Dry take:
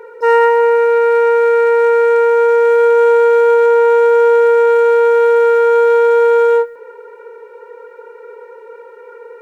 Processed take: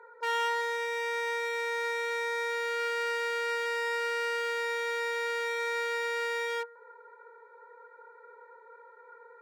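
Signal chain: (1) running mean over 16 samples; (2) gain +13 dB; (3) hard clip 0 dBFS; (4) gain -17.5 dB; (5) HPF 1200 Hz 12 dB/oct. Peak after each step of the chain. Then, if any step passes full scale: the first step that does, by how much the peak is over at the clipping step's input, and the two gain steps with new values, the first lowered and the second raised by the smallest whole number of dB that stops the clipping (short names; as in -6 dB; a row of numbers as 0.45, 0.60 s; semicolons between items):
-3.5, +9.5, 0.0, -17.5, -21.5 dBFS; step 2, 9.5 dB; step 2 +3 dB, step 4 -7.5 dB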